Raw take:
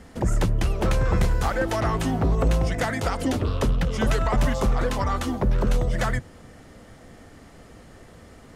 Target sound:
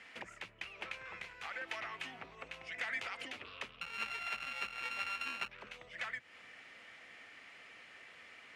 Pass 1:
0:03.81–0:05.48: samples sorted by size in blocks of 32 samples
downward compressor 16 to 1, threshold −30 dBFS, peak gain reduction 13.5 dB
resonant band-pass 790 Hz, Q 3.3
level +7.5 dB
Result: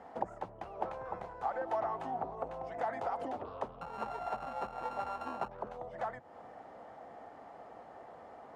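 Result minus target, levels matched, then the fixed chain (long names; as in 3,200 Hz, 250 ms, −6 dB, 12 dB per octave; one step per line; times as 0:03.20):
2,000 Hz band −12.5 dB
0:03.81–0:05.48: samples sorted by size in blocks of 32 samples
downward compressor 16 to 1, threshold −30 dBFS, peak gain reduction 13.5 dB
resonant band-pass 2,400 Hz, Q 3.3
level +7.5 dB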